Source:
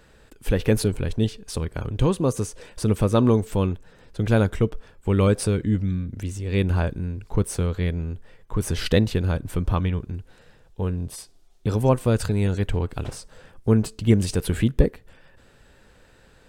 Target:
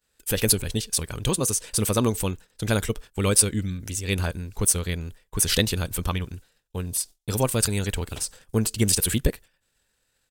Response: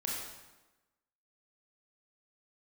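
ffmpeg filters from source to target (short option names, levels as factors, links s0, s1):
-af "crystalizer=i=7.5:c=0,agate=range=0.0224:threshold=0.0178:ratio=3:detection=peak,atempo=1.6,volume=0.596"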